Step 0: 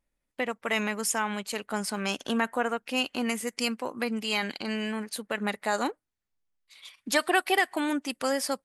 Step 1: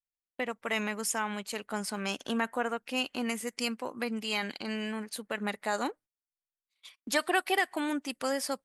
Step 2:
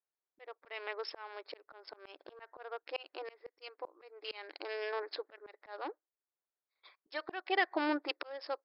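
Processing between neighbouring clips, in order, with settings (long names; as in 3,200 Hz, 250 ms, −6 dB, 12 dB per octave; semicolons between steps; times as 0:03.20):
noise gate −49 dBFS, range −25 dB; level −3.5 dB
adaptive Wiener filter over 15 samples; linear-phase brick-wall band-pass 300–5,400 Hz; volume swells 706 ms; level +5.5 dB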